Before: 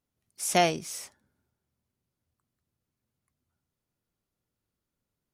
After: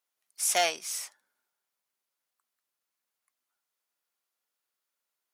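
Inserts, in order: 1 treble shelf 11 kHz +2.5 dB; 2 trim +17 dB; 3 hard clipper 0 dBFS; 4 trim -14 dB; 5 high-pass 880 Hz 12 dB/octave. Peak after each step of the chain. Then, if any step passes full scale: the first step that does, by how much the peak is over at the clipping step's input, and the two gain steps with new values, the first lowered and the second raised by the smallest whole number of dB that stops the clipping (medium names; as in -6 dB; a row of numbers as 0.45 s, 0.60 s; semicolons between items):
-8.0 dBFS, +9.0 dBFS, 0.0 dBFS, -14.0 dBFS, -9.5 dBFS; step 2, 9.0 dB; step 2 +8 dB, step 4 -5 dB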